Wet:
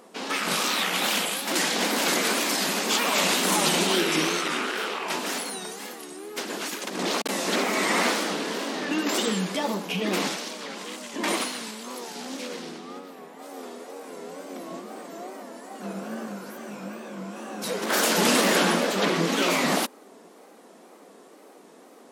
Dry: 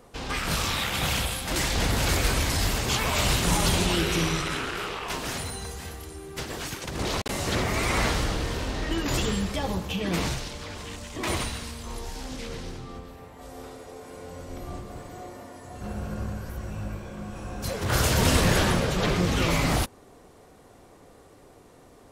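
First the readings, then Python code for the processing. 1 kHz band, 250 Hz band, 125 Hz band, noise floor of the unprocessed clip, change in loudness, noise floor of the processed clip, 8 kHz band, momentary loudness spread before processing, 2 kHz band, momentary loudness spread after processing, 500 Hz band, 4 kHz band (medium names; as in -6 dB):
+3.0 dB, +1.5 dB, -11.0 dB, -53 dBFS, +2.0 dB, -51 dBFS, +3.0 dB, 18 LU, +3.0 dB, 18 LU, +3.0 dB, +3.0 dB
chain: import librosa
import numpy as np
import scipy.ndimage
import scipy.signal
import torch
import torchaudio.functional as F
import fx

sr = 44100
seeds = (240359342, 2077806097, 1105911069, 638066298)

y = fx.brickwall_highpass(x, sr, low_hz=180.0)
y = fx.wow_flutter(y, sr, seeds[0], rate_hz=2.1, depth_cents=130.0)
y = y * librosa.db_to_amplitude(3.0)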